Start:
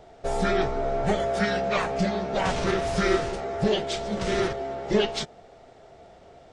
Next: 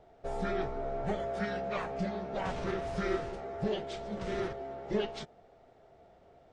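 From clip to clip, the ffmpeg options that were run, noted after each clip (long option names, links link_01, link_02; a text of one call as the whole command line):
ffmpeg -i in.wav -af "highshelf=frequency=3400:gain=-10,volume=-9dB" out.wav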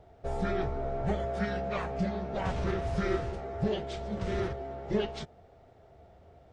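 ffmpeg -i in.wav -af "equalizer=frequency=78:width=0.99:gain=12.5,volume=1dB" out.wav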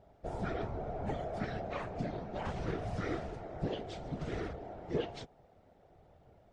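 ffmpeg -i in.wav -af "afftfilt=real='hypot(re,im)*cos(2*PI*random(0))':imag='hypot(re,im)*sin(2*PI*random(1))':win_size=512:overlap=0.75" out.wav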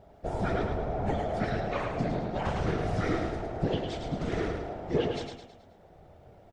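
ffmpeg -i in.wav -af "aecho=1:1:107|214|321|428|535:0.562|0.242|0.104|0.0447|0.0192,volume=6.5dB" out.wav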